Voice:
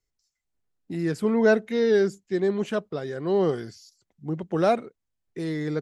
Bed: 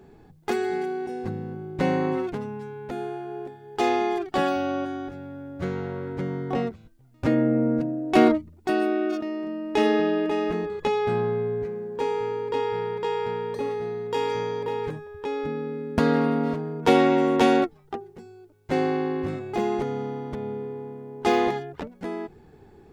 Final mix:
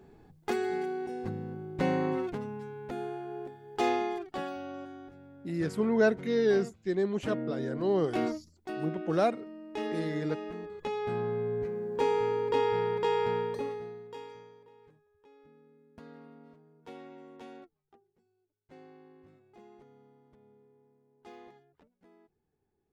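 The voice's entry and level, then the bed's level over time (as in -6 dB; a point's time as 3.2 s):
4.55 s, -5.0 dB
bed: 3.89 s -5 dB
4.48 s -14 dB
10.47 s -14 dB
11.96 s -1 dB
13.39 s -1 dB
14.71 s -29.5 dB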